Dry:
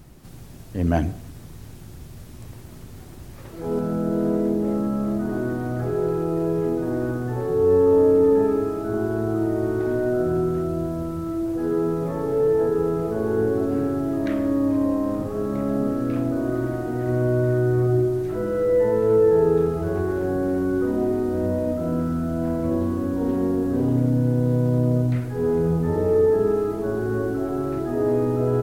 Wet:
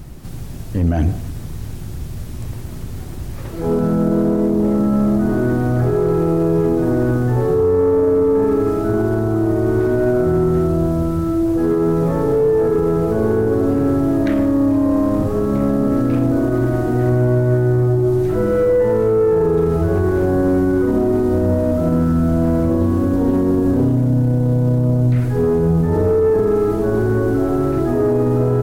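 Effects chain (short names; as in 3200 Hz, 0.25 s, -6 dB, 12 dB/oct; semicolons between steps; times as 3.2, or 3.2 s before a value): low shelf 140 Hz +7 dB; limiter -15 dBFS, peak gain reduction 9.5 dB; soft clip -15 dBFS, distortion -23 dB; gain +8 dB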